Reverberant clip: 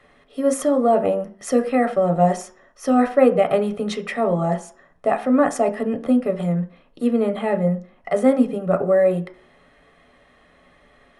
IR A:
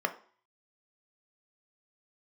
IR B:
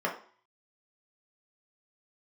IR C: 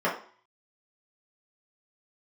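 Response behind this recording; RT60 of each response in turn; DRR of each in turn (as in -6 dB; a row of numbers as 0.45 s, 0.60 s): A; 0.45 s, 0.45 s, 0.45 s; 6.5 dB, -2.5 dB, -7.5 dB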